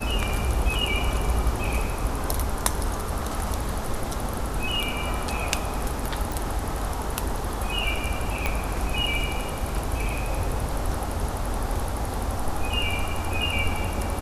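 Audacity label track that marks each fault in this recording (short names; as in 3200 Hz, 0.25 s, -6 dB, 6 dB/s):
6.320000	6.320000	pop
8.460000	8.460000	pop -9 dBFS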